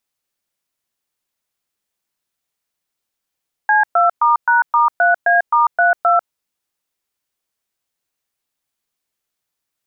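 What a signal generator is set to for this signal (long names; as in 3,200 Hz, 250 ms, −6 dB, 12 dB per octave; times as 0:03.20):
touch tones "C2*#*3A*32", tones 145 ms, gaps 117 ms, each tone −12.5 dBFS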